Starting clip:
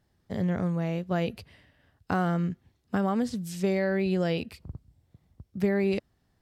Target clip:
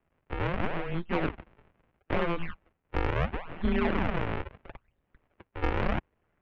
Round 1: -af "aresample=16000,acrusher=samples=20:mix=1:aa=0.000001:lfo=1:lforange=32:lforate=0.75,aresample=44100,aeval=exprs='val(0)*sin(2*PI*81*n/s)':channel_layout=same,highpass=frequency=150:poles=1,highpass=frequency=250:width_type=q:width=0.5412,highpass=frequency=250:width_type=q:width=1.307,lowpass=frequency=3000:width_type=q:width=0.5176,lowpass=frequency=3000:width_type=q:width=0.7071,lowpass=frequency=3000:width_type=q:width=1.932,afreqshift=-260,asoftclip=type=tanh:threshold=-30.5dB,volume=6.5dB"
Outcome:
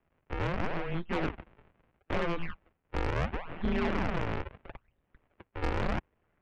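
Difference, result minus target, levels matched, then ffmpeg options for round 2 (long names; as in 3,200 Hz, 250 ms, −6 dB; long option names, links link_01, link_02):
soft clipping: distortion +10 dB
-af "aresample=16000,acrusher=samples=20:mix=1:aa=0.000001:lfo=1:lforange=32:lforate=0.75,aresample=44100,aeval=exprs='val(0)*sin(2*PI*81*n/s)':channel_layout=same,highpass=frequency=150:poles=1,highpass=frequency=250:width_type=q:width=0.5412,highpass=frequency=250:width_type=q:width=1.307,lowpass=frequency=3000:width_type=q:width=0.5176,lowpass=frequency=3000:width_type=q:width=0.7071,lowpass=frequency=3000:width_type=q:width=1.932,afreqshift=-260,asoftclip=type=tanh:threshold=-22.5dB,volume=6.5dB"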